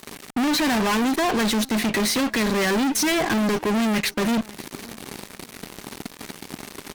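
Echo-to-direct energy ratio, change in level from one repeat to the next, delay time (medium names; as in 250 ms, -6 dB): -22.0 dB, -10.5 dB, 556 ms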